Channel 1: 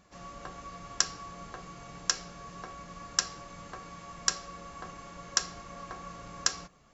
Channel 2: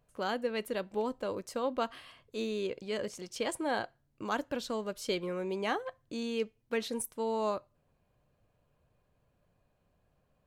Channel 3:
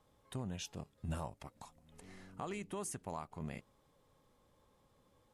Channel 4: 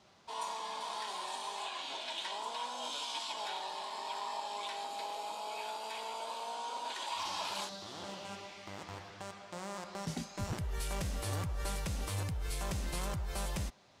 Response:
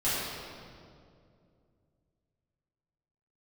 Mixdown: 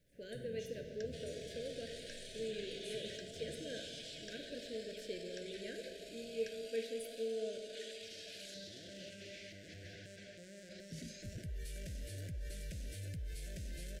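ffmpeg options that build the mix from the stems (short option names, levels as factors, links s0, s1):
-filter_complex "[0:a]lowpass=3000,volume=0.106[s0];[1:a]equalizer=f=450:t=o:w=0.21:g=10,volume=0.141,asplit=2[s1][s2];[s2]volume=0.2[s3];[2:a]acompressor=threshold=0.00562:ratio=6,acrusher=bits=11:mix=0:aa=0.000001,volume=0.299,asplit=2[s4][s5];[s5]volume=0.447[s6];[3:a]alimiter=level_in=6.31:limit=0.0631:level=0:latency=1:release=26,volume=0.158,adelay=850,volume=1[s7];[4:a]atrim=start_sample=2205[s8];[s3][s6]amix=inputs=2:normalize=0[s9];[s9][s8]afir=irnorm=-1:irlink=0[s10];[s0][s1][s4][s7][s10]amix=inputs=5:normalize=0,asuperstop=centerf=1000:order=20:qfactor=1.2,lowshelf=f=140:g=3.5"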